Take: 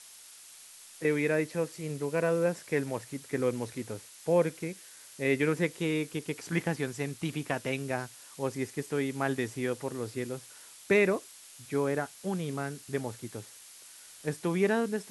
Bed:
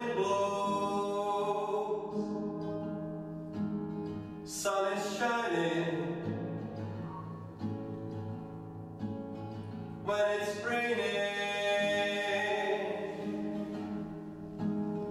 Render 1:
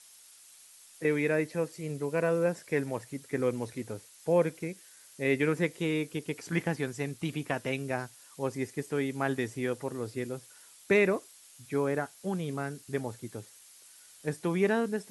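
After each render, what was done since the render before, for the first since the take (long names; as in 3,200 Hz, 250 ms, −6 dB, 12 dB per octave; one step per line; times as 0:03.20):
broadband denoise 6 dB, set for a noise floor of −52 dBFS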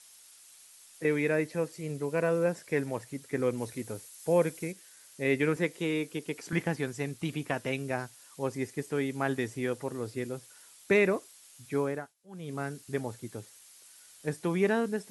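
0:03.57–0:04.71: high-shelf EQ 9,900 Hz → 6,000 Hz +9.5 dB
0:05.56–0:06.53: high-pass filter 160 Hz
0:11.80–0:12.62: duck −23 dB, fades 0.34 s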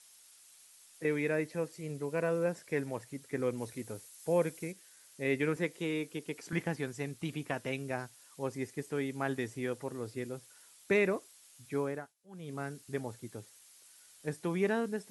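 level −4 dB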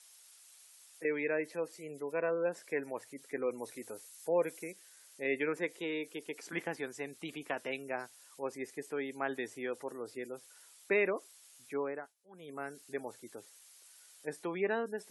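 high-pass filter 340 Hz 12 dB per octave
gate on every frequency bin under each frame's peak −30 dB strong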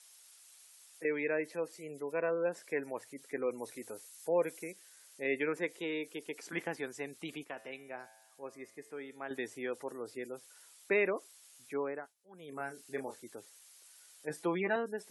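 0:07.44–0:09.31: tuned comb filter 110 Hz, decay 1.1 s
0:12.49–0:13.22: double-tracking delay 30 ms −6.5 dB
0:14.29–0:14.76: comb filter 6 ms, depth 90%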